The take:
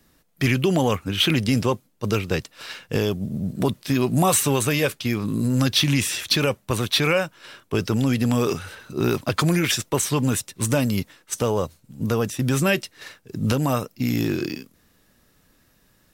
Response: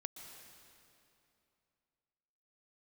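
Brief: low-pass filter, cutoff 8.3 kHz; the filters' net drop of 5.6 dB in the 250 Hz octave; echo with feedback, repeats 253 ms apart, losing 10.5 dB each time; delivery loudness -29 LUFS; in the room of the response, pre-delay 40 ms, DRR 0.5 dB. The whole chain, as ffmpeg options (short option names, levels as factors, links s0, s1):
-filter_complex "[0:a]lowpass=8300,equalizer=f=250:t=o:g=-7.5,aecho=1:1:253|506|759:0.299|0.0896|0.0269,asplit=2[s0][s1];[1:a]atrim=start_sample=2205,adelay=40[s2];[s1][s2]afir=irnorm=-1:irlink=0,volume=1.33[s3];[s0][s3]amix=inputs=2:normalize=0,volume=0.447"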